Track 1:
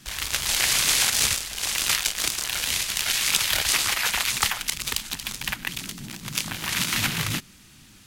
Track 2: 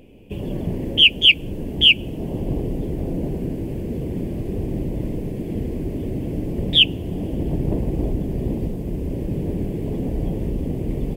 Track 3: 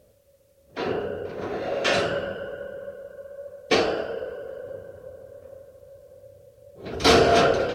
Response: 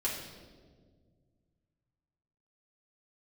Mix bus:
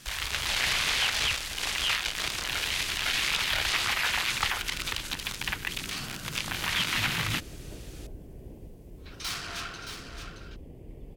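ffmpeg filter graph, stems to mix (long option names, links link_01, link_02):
-filter_complex "[0:a]acrossover=split=4200[link_01][link_02];[link_02]acompressor=threshold=-37dB:ratio=4:attack=1:release=60[link_03];[link_01][link_03]amix=inputs=2:normalize=0,volume=1dB[link_04];[1:a]volume=-18dB[link_05];[2:a]highshelf=frequency=3400:gain=8.5,asoftclip=type=tanh:threshold=-20dB,highpass=frequency=1000:width=0.5412,highpass=frequency=1000:width=1.3066,adelay=2200,volume=-9dB,asplit=2[link_06][link_07];[link_07]volume=-8dB,aecho=0:1:622:1[link_08];[link_04][link_05][link_06][link_08]amix=inputs=4:normalize=0,equalizer=frequency=210:width=0.78:gain=-7,asoftclip=type=hard:threshold=-13.5dB,alimiter=limit=-16.5dB:level=0:latency=1:release=14"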